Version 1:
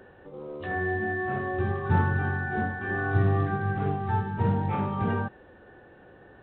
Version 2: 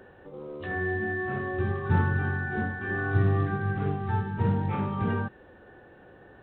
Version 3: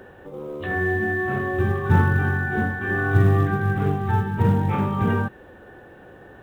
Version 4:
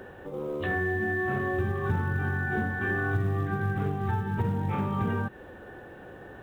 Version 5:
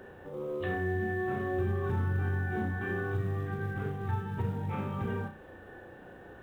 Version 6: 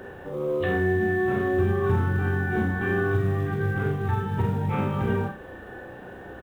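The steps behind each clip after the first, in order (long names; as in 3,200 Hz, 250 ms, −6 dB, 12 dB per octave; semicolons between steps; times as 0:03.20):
dynamic equaliser 730 Hz, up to −5 dB, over −45 dBFS, Q 1.7
log-companded quantiser 8 bits; level +6.5 dB
downward compressor 6 to 1, threshold −25 dBFS, peak gain reduction 13 dB
flutter between parallel walls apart 5.6 metres, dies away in 0.33 s; level −5.5 dB
double-tracking delay 48 ms −8 dB; level +8 dB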